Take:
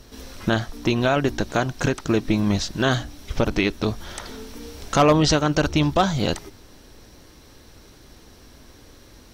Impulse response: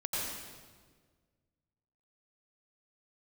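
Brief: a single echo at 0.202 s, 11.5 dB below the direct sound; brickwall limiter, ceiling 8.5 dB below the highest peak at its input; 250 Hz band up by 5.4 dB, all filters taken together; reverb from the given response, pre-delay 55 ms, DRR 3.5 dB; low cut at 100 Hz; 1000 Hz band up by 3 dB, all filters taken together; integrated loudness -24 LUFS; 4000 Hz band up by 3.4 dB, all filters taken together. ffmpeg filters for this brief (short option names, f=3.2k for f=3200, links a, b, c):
-filter_complex "[0:a]highpass=100,equalizer=f=250:t=o:g=7,equalizer=f=1k:t=o:g=3.5,equalizer=f=4k:t=o:g=4,alimiter=limit=-10.5dB:level=0:latency=1,aecho=1:1:202:0.266,asplit=2[a][b];[1:a]atrim=start_sample=2205,adelay=55[c];[b][c]afir=irnorm=-1:irlink=0,volume=-8.5dB[d];[a][d]amix=inputs=2:normalize=0,volume=-3dB"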